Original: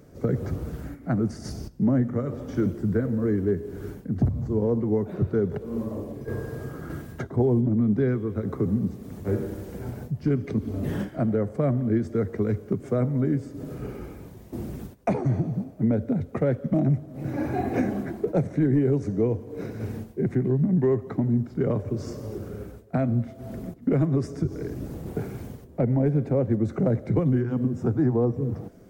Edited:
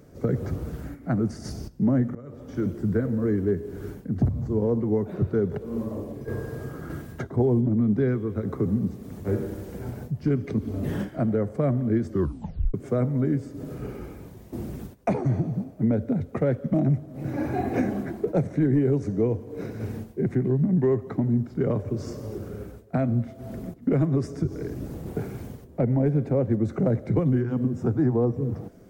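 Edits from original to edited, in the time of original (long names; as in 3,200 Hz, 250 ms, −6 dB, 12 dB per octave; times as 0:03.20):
0:02.15–0:02.82: fade in, from −19 dB
0:12.08: tape stop 0.66 s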